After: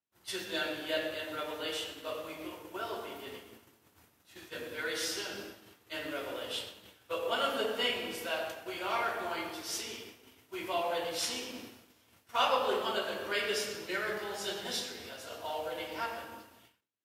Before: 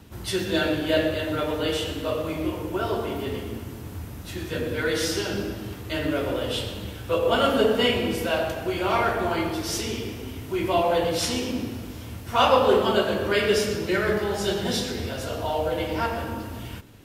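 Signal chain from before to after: expander -27 dBFS; high-pass 880 Hz 6 dB/octave; endings held to a fixed fall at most 150 dB/s; trim -6.5 dB

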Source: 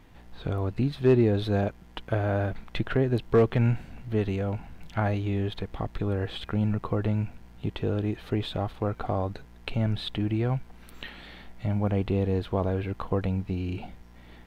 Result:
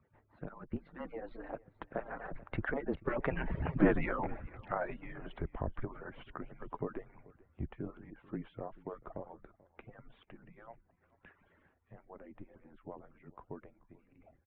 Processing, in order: harmonic-percussive separation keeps percussive; Doppler pass-by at 3.80 s, 27 m/s, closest 2.5 m; low-pass 1.9 kHz 24 dB/octave; in parallel at +1 dB: compressor with a negative ratio -57 dBFS, ratio -1; on the sum: frequency shift -27 Hz; on a send: delay 436 ms -22 dB; on the sum: trim +13 dB

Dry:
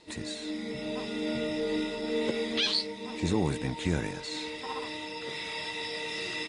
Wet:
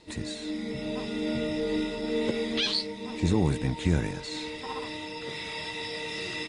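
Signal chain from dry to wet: bass shelf 180 Hz +8.5 dB

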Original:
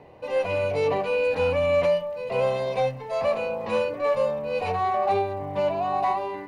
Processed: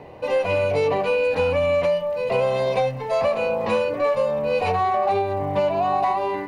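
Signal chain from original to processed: compression, threshold -25 dBFS, peak gain reduction 7.5 dB; trim +7.5 dB

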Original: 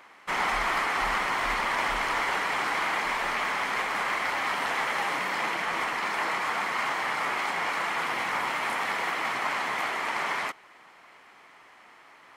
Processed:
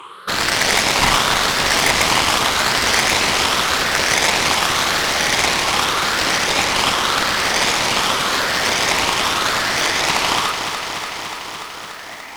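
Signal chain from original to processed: drifting ripple filter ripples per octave 0.66, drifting +0.87 Hz, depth 20 dB; Chebyshev shaper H 7 -7 dB, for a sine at -10.5 dBFS; bit-crushed delay 291 ms, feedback 80%, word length 8-bit, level -7.5 dB; trim +4.5 dB

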